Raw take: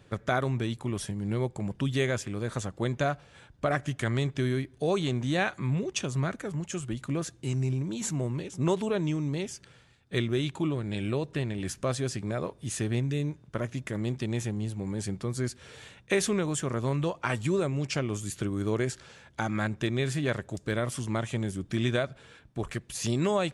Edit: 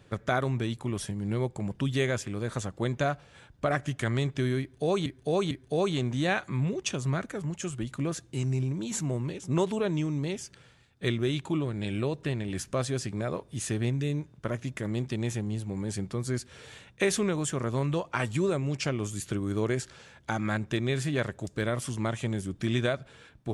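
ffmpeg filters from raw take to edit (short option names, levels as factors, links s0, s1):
-filter_complex "[0:a]asplit=3[s0][s1][s2];[s0]atrim=end=5.062[s3];[s1]atrim=start=4.608:end=5.062[s4];[s2]atrim=start=4.608[s5];[s3][s4]acrossfade=d=0.004:c1=hsin:c2=hsin[s6];[s6][s5]acrossfade=d=0.004:c1=hsin:c2=hsin"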